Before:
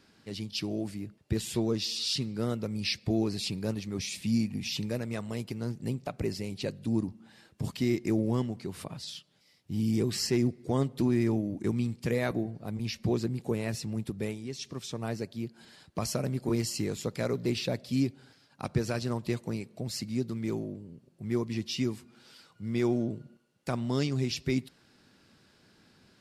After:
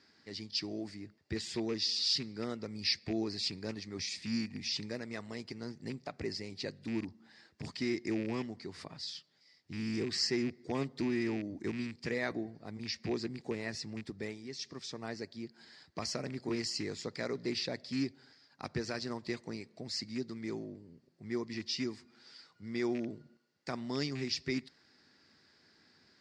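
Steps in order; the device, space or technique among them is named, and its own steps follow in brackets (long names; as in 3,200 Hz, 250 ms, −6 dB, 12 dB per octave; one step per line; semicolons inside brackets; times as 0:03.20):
car door speaker with a rattle (loose part that buzzes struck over −29 dBFS, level −32 dBFS; loudspeaker in its box 84–7,300 Hz, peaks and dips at 120 Hz −9 dB, 190 Hz −6 dB, 550 Hz −3 dB, 1,900 Hz +8 dB, 2,900 Hz −4 dB, 4,800 Hz +9 dB)
level −5 dB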